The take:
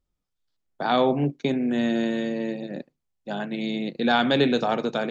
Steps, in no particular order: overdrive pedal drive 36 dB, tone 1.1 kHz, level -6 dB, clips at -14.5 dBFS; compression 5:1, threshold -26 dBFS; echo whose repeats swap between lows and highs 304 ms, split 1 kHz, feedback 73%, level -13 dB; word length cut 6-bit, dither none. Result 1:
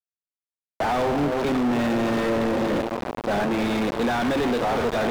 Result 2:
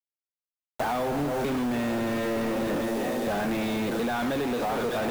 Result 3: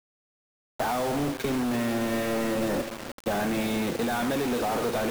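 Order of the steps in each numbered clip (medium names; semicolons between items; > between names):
echo whose repeats swap between lows and highs > compression > word length cut > overdrive pedal; echo whose repeats swap between lows and highs > overdrive pedal > word length cut > compression; overdrive pedal > compression > echo whose repeats swap between lows and highs > word length cut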